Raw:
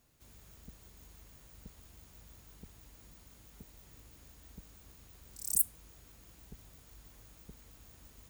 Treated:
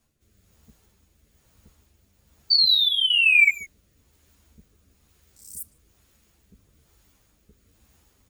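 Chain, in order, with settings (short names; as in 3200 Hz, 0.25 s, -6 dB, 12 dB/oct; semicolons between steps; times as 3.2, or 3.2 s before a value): reverse; upward compressor, threshold -55 dBFS; reverse; painted sound fall, 2.5–3.5, 2200–4600 Hz -15 dBFS; rotary speaker horn 1.1 Hz; speakerphone echo 0.15 s, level -10 dB; ensemble effect; gain +1.5 dB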